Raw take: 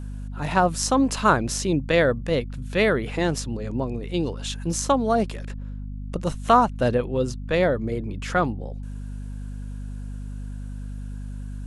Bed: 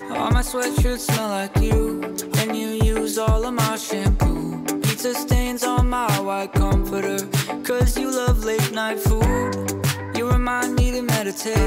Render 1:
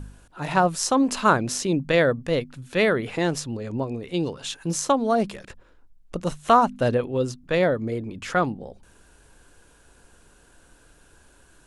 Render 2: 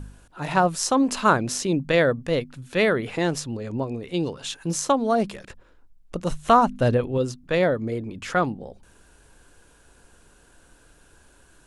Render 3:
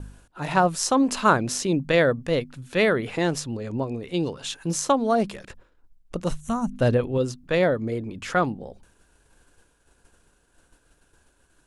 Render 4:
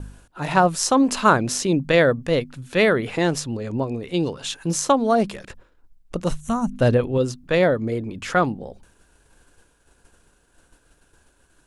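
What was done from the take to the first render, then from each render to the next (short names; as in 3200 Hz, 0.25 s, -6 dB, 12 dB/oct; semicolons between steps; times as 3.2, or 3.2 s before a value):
de-hum 50 Hz, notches 5
6.3–7.18 low shelf 110 Hz +10 dB
6.4–6.73 spectral gain 250–5600 Hz -15 dB; expander -47 dBFS
gain +3 dB; limiter -3 dBFS, peak gain reduction 1 dB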